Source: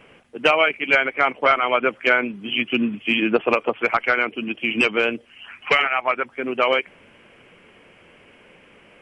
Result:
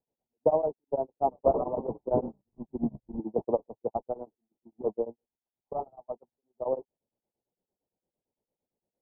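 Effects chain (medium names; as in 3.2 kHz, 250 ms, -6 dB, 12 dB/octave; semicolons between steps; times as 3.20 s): jump at every zero crossing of -20.5 dBFS; 1.13–3.20 s: frequency-shifting echo 99 ms, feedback 58%, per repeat -95 Hz, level -6.5 dB; gate -14 dBFS, range -58 dB; steep low-pass 920 Hz 72 dB/octave; tremolo of two beating tones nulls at 8.8 Hz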